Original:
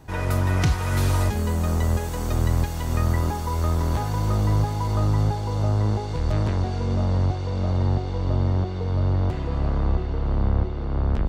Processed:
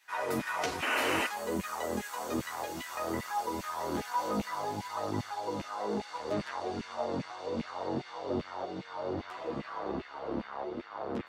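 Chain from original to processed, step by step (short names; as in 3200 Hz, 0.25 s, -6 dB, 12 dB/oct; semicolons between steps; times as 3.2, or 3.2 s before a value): LFO high-pass saw down 2.5 Hz 210–2400 Hz; chorus voices 2, 0.59 Hz, delay 12 ms, depth 3.5 ms; painted sound noise, 0.82–1.27, 230–3100 Hz -29 dBFS; gain -3 dB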